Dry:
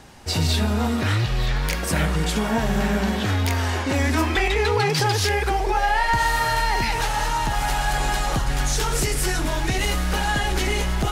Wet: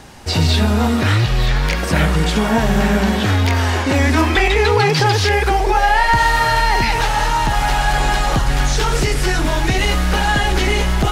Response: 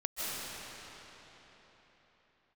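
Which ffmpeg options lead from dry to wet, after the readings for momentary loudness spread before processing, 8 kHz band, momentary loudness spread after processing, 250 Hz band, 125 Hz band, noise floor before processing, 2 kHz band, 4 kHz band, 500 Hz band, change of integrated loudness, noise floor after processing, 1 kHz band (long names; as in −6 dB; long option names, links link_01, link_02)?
4 LU, +1.5 dB, 4 LU, +6.5 dB, +6.5 dB, −25 dBFS, +6.5 dB, +5.5 dB, +6.5 dB, +6.0 dB, −19 dBFS, +6.5 dB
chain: -filter_complex "[0:a]acrossover=split=5500[link_01][link_02];[link_02]acompressor=threshold=-40dB:ratio=4:attack=1:release=60[link_03];[link_01][link_03]amix=inputs=2:normalize=0,volume=6.5dB"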